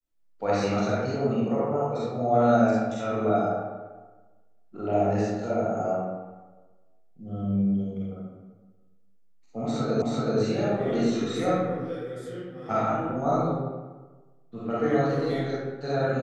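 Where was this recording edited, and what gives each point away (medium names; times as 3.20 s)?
10.02 s: repeat of the last 0.38 s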